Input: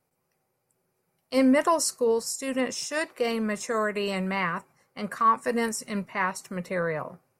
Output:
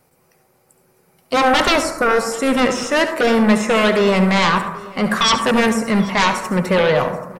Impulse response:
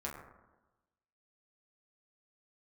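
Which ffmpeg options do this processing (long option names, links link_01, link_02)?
-filter_complex "[0:a]acrossover=split=2700[link_01][link_02];[link_02]acompressor=threshold=-46dB:ratio=4:attack=1:release=60[link_03];[link_01][link_03]amix=inputs=2:normalize=0,aeval=exprs='0.266*sin(PI/2*4.47*val(0)/0.266)':channel_layout=same,aecho=1:1:783:0.0841,asplit=2[link_04][link_05];[1:a]atrim=start_sample=2205,adelay=70[link_06];[link_05][link_06]afir=irnorm=-1:irlink=0,volume=-8.5dB[link_07];[link_04][link_07]amix=inputs=2:normalize=0"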